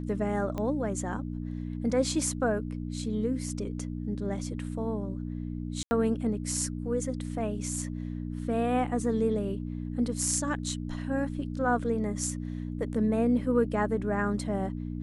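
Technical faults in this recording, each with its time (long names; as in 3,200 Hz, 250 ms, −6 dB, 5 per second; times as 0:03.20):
mains hum 60 Hz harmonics 5 −35 dBFS
0:00.58: click −21 dBFS
0:05.83–0:05.91: drop-out 80 ms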